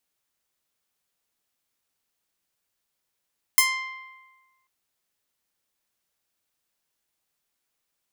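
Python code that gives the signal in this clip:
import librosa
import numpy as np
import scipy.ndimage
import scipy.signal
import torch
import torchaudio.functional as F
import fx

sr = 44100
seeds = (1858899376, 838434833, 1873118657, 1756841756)

y = fx.pluck(sr, length_s=1.09, note=84, decay_s=1.37, pick=0.26, brightness='bright')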